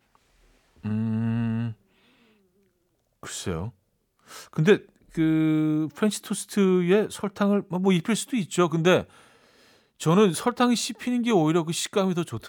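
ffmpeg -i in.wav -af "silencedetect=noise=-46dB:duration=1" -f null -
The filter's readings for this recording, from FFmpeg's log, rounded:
silence_start: 1.74
silence_end: 3.23 | silence_duration: 1.50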